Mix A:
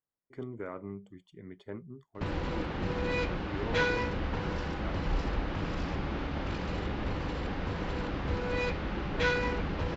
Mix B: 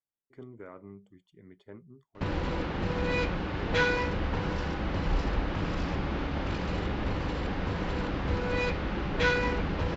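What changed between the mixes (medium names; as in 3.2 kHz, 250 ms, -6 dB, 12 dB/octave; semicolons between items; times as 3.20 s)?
speech -6.0 dB; background: send +7.5 dB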